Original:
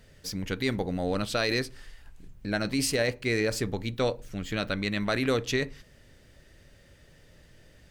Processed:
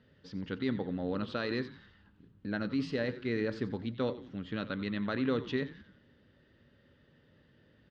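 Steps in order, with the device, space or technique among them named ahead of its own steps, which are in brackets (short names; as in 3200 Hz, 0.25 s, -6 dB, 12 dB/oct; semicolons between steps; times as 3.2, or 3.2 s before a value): frequency-shifting delay pedal into a guitar cabinet (frequency-shifting echo 89 ms, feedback 48%, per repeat -110 Hz, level -15 dB; speaker cabinet 97–3500 Hz, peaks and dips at 240 Hz +6 dB, 690 Hz -7 dB, 2300 Hz -10 dB); gain -5.5 dB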